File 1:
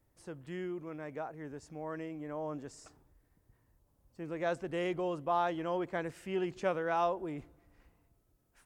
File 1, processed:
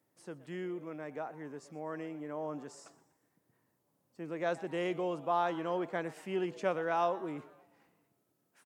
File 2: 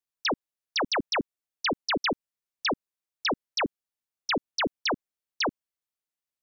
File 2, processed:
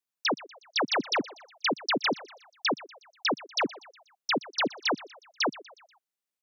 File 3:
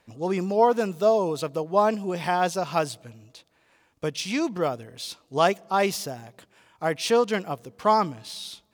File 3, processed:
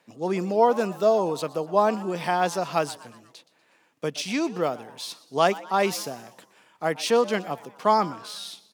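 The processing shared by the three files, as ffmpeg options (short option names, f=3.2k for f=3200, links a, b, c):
-filter_complex "[0:a]highpass=f=150:w=0.5412,highpass=f=150:w=1.3066,asplit=2[a][b];[b]asplit=4[c][d][e][f];[c]adelay=121,afreqshift=130,volume=-19dB[g];[d]adelay=242,afreqshift=260,volume=-25.2dB[h];[e]adelay=363,afreqshift=390,volume=-31.4dB[i];[f]adelay=484,afreqshift=520,volume=-37.6dB[j];[g][h][i][j]amix=inputs=4:normalize=0[k];[a][k]amix=inputs=2:normalize=0"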